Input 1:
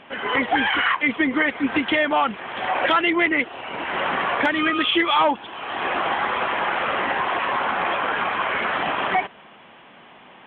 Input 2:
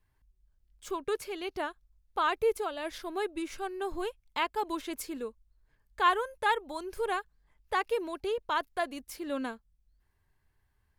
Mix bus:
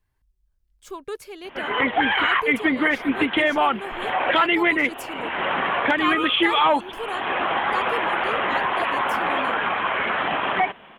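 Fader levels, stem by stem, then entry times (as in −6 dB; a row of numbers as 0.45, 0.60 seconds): 0.0, −0.5 decibels; 1.45, 0.00 seconds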